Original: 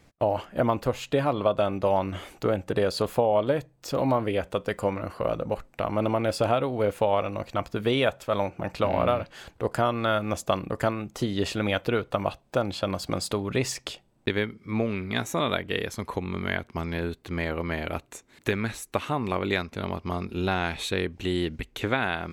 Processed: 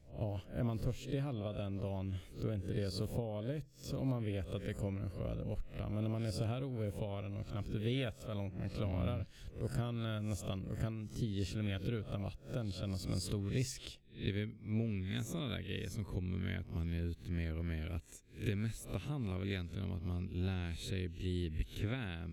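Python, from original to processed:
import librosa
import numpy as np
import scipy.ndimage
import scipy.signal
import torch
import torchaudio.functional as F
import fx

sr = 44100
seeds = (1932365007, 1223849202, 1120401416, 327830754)

y = fx.spec_swells(x, sr, rise_s=0.35)
y = fx.tone_stack(y, sr, knobs='10-0-1')
y = fx.rider(y, sr, range_db=10, speed_s=2.0)
y = y * librosa.db_to_amplitude(6.5)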